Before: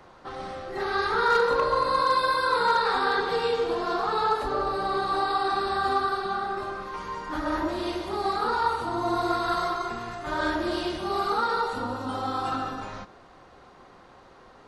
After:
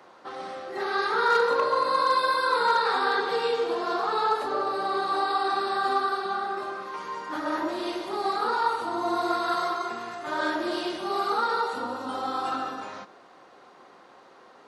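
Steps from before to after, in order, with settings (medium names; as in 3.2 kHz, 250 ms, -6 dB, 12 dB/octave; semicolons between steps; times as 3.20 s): high-pass 260 Hz 12 dB/octave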